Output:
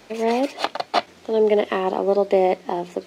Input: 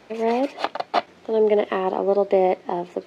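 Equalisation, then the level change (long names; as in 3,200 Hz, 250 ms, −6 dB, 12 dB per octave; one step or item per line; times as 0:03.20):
low-shelf EQ 130 Hz +6 dB
high-shelf EQ 4,100 Hz +11.5 dB
mains-hum notches 60/120/180 Hz
0.0 dB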